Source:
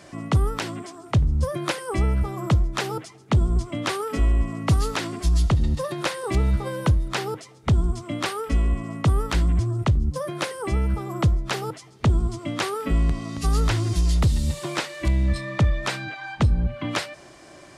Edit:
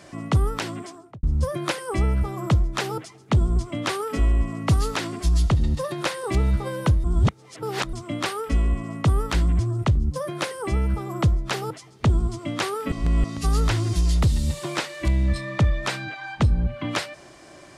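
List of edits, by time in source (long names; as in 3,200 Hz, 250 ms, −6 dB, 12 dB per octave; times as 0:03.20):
0:00.87–0:01.23: fade out and dull
0:07.04–0:07.93: reverse
0:12.92–0:13.24: reverse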